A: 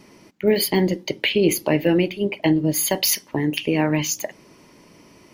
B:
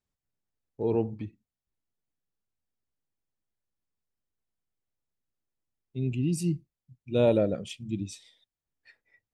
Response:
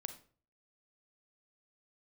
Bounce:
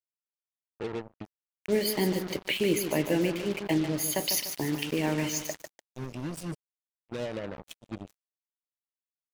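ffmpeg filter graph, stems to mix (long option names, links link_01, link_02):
-filter_complex "[0:a]adelay=1250,volume=-8.5dB,asplit=2[link_01][link_02];[link_02]volume=-8.5dB[link_03];[1:a]lowshelf=frequency=64:gain=-9.5,acompressor=threshold=-27dB:ratio=5,tremolo=f=8.3:d=0.42,volume=-3dB,asplit=2[link_04][link_05];[link_05]volume=-20dB[link_06];[link_03][link_06]amix=inputs=2:normalize=0,aecho=0:1:148|296|444|592|740|888:1|0.42|0.176|0.0741|0.0311|0.0131[link_07];[link_01][link_04][link_07]amix=inputs=3:normalize=0,acrusher=bits=5:mix=0:aa=0.5"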